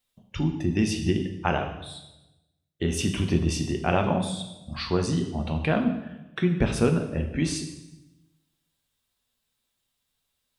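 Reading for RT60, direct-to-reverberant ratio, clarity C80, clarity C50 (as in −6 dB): 1.0 s, 4.0 dB, 10.0 dB, 8.0 dB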